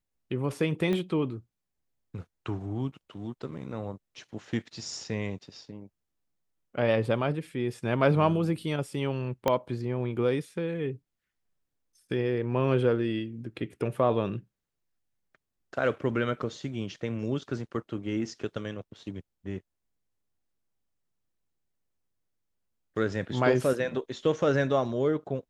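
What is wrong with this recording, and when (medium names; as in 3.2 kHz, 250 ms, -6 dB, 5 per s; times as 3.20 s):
0.93 s: pop -19 dBFS
9.48 s: pop -11 dBFS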